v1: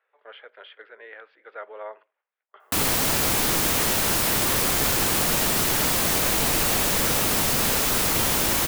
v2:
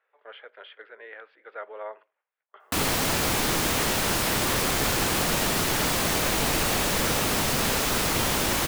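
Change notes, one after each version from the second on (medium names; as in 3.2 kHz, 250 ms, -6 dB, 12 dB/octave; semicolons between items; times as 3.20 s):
master: add treble shelf 8.4 kHz -8 dB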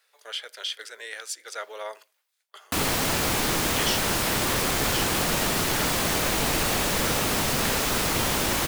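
speech: remove Gaussian low-pass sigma 4.4 samples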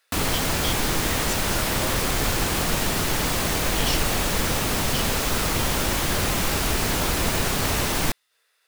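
background: entry -2.60 s; master: add bass shelf 83 Hz +10 dB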